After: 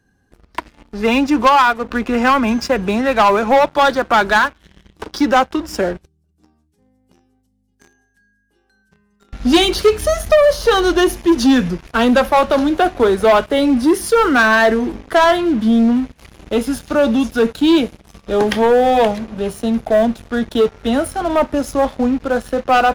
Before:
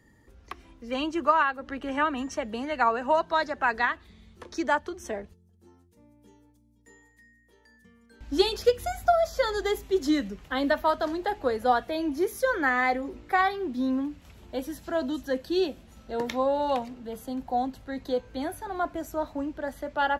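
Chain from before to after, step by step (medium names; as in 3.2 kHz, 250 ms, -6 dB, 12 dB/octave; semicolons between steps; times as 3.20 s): tape speed -12%; waveshaping leveller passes 3; trim +4.5 dB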